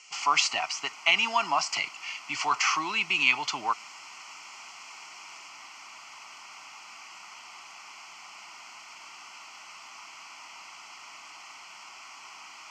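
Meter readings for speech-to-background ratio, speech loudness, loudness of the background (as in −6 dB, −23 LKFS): 19.0 dB, −26.0 LKFS, −45.0 LKFS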